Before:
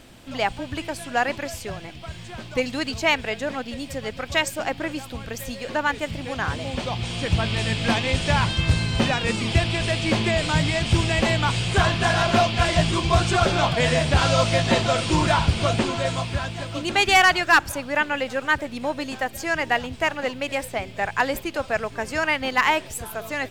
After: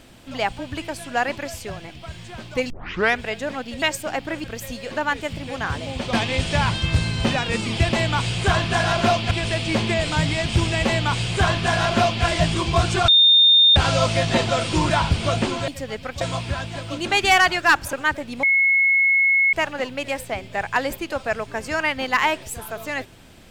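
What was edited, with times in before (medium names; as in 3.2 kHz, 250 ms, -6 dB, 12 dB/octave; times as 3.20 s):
2.70 s: tape start 0.51 s
3.82–4.35 s: move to 16.05 s
4.97–5.22 s: delete
6.91–7.88 s: delete
11.23–12.61 s: copy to 9.68 s
13.45–14.13 s: bleep 3.64 kHz -10 dBFS
17.77–18.37 s: delete
18.87–19.97 s: bleep 2.18 kHz -14 dBFS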